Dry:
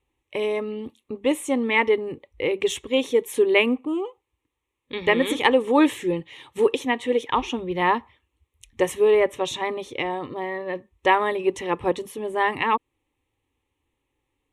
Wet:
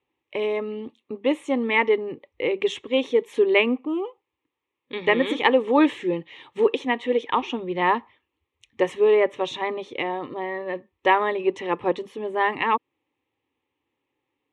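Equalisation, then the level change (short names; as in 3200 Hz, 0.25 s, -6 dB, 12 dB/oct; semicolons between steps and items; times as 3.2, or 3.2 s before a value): BPF 170–3900 Hz; 0.0 dB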